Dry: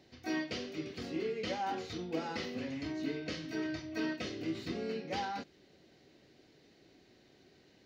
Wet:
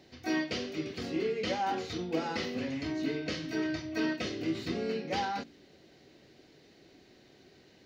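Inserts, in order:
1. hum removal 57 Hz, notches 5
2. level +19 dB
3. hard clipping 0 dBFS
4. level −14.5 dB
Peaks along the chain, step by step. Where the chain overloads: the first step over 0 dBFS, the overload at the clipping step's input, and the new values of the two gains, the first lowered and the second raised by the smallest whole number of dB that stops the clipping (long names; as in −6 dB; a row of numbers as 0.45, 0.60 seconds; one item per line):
−24.0, −5.0, −5.0, −19.5 dBFS
no step passes full scale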